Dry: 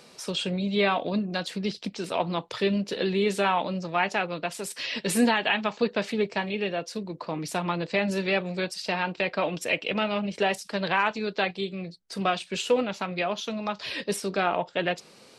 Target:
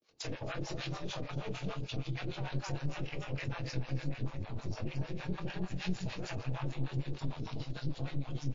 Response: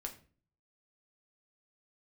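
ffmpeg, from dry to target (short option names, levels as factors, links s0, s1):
-filter_complex "[0:a]areverse,acrossover=split=240[s0][s1];[s1]acompressor=threshold=0.0126:ratio=5[s2];[s0][s2]amix=inputs=2:normalize=0,agate=range=0.00562:threshold=0.00355:ratio=16:detection=peak,afreqshift=-55,asubboost=boost=3.5:cutoff=110,atempo=1.8,aecho=1:1:250|367|527:0.668|0.188|0.126,aeval=exprs='clip(val(0),-1,0.00841)':c=same,acompressor=threshold=0.0158:ratio=6,asplit=2[s3][s4];[1:a]atrim=start_sample=2205,adelay=22[s5];[s4][s5]afir=irnorm=-1:irlink=0,volume=0.794[s6];[s3][s6]amix=inputs=2:normalize=0,acrossover=split=630[s7][s8];[s7]aeval=exprs='val(0)*(1-1/2+1/2*cos(2*PI*6.6*n/s))':c=same[s9];[s8]aeval=exprs='val(0)*(1-1/2-1/2*cos(2*PI*6.6*n/s))':c=same[s10];[s9][s10]amix=inputs=2:normalize=0,volume=1.88" -ar 16000 -c:a libmp3lame -b:a 32k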